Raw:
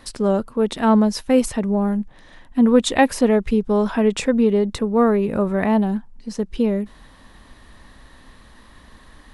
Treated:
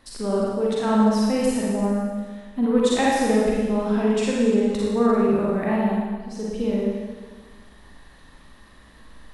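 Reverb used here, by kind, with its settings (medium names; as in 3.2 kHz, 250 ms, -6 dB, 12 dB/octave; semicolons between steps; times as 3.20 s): Schroeder reverb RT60 1.5 s, DRR -5.5 dB; trim -9 dB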